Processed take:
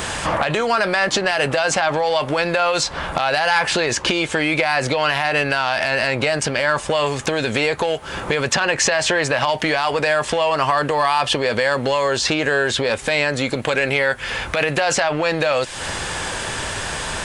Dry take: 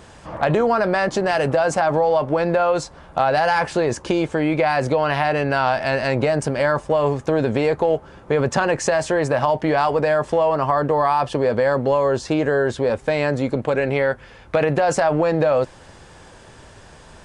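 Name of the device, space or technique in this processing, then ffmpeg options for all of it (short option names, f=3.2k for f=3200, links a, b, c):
mastering chain: -filter_complex "[0:a]equalizer=f=5.3k:t=o:w=0.86:g=-4,acrossover=split=2200|5400[a][b][c];[a]acompressor=threshold=-29dB:ratio=4[d];[b]acompressor=threshold=-38dB:ratio=4[e];[c]acompressor=threshold=-57dB:ratio=4[f];[d][e][f]amix=inputs=3:normalize=0,acompressor=threshold=-37dB:ratio=2,asoftclip=type=tanh:threshold=-24dB,tiltshelf=f=1.1k:g=-6.5,alimiter=level_in=26dB:limit=-1dB:release=50:level=0:latency=1,volume=-6dB"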